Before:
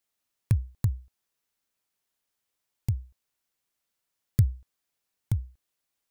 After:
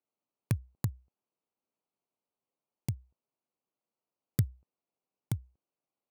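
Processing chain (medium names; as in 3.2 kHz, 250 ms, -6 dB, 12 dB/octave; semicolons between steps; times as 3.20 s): local Wiener filter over 25 samples; high-pass 170 Hz 12 dB/octave; trim +1.5 dB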